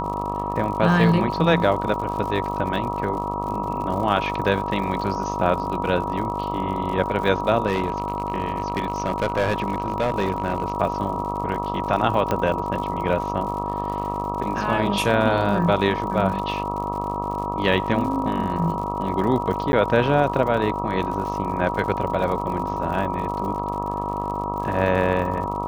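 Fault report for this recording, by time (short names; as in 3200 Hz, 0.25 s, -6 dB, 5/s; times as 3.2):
buzz 50 Hz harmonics 26 -29 dBFS
crackle 85/s -31 dBFS
tone 960 Hz -27 dBFS
7.66–10.72 clipped -16 dBFS
12.31 pop -9 dBFS
19.72–19.73 gap 10 ms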